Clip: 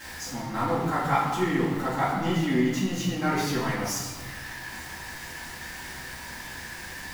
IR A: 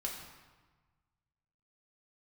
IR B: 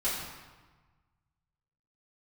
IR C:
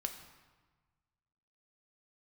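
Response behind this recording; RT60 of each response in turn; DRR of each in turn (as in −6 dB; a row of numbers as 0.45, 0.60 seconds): B; 1.3, 1.3, 1.3 seconds; −2.0, −11.0, 4.5 decibels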